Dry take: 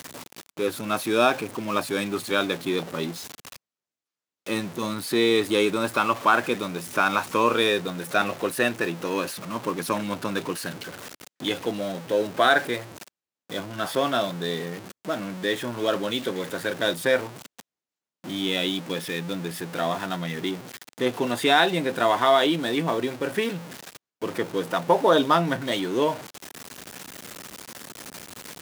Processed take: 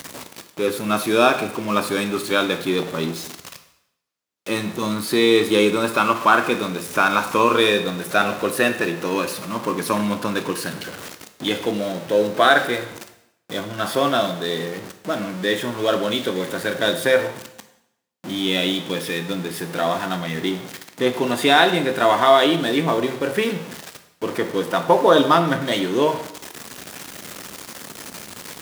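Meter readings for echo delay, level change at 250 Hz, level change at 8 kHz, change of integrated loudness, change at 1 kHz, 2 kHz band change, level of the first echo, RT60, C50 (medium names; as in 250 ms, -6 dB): no echo, +5.0 dB, +4.5 dB, +4.5 dB, +4.5 dB, +4.5 dB, no echo, 0.80 s, 10.5 dB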